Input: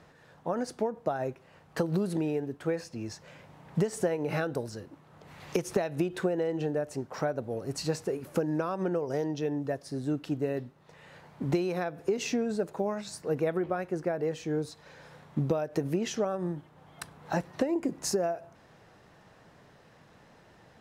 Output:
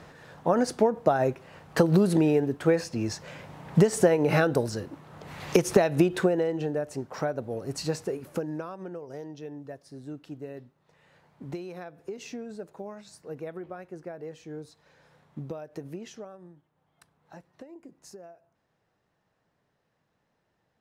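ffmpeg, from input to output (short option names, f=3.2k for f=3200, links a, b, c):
-af "volume=8dB,afade=t=out:st=5.98:d=0.6:silence=0.446684,afade=t=out:st=8.02:d=0.79:silence=0.316228,afade=t=out:st=15.9:d=0.6:silence=0.354813"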